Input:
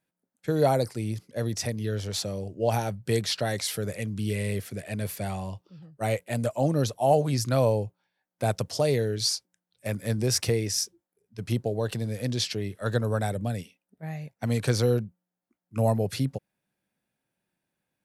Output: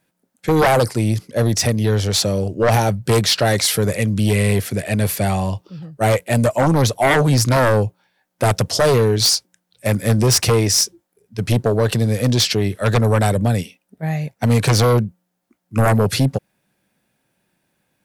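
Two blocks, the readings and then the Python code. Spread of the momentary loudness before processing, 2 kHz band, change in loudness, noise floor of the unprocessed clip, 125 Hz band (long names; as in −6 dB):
12 LU, +14.0 dB, +10.5 dB, below −85 dBFS, +11.0 dB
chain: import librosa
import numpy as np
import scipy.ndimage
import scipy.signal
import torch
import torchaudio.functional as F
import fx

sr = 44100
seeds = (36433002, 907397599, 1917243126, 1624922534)

y = fx.fold_sine(x, sr, drive_db=10, ceiling_db=-10.0)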